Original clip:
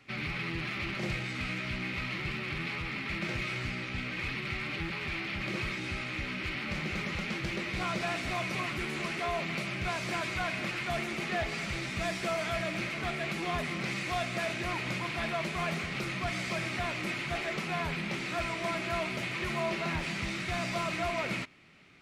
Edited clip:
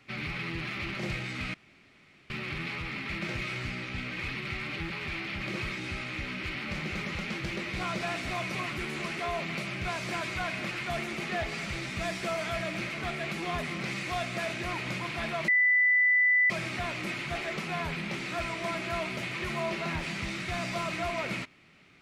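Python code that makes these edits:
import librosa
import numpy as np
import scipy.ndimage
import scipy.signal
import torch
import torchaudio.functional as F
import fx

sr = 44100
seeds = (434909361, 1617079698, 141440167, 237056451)

y = fx.edit(x, sr, fx.room_tone_fill(start_s=1.54, length_s=0.76),
    fx.bleep(start_s=15.48, length_s=1.02, hz=1990.0, db=-20.0), tone=tone)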